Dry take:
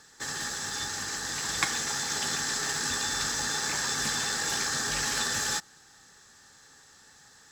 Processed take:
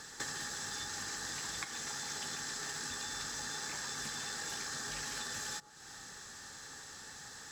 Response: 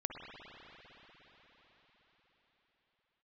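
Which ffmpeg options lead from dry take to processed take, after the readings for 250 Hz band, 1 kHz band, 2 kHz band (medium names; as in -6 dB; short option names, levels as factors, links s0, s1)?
-10.0 dB, -10.0 dB, -10.0 dB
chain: -filter_complex "[0:a]asplit=2[s0][s1];[1:a]atrim=start_sample=2205,atrim=end_sample=3087,asetrate=22491,aresample=44100[s2];[s1][s2]afir=irnorm=-1:irlink=0,volume=0.224[s3];[s0][s3]amix=inputs=2:normalize=0,acompressor=threshold=0.00794:ratio=12,volume=1.58"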